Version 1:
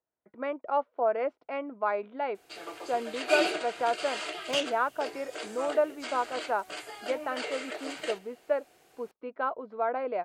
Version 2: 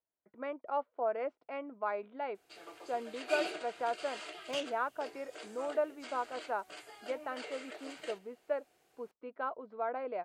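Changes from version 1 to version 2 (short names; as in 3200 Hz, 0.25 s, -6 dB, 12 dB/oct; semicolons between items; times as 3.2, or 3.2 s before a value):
speech -6.5 dB; background -9.5 dB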